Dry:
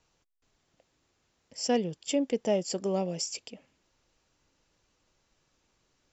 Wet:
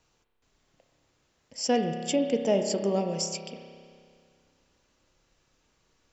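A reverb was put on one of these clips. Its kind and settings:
spring reverb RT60 2.2 s, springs 30 ms, chirp 25 ms, DRR 5 dB
level +2 dB

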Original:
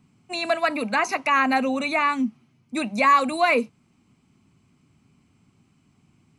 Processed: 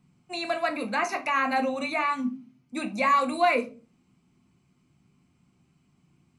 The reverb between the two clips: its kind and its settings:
rectangular room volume 170 cubic metres, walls furnished, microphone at 0.88 metres
level −6 dB

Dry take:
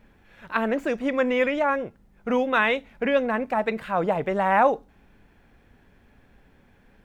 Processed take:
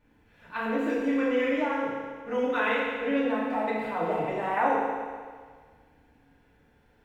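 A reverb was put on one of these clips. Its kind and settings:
feedback delay network reverb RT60 1.7 s, low-frequency decay 0.9×, high-frequency decay 1×, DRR −8 dB
level −13 dB

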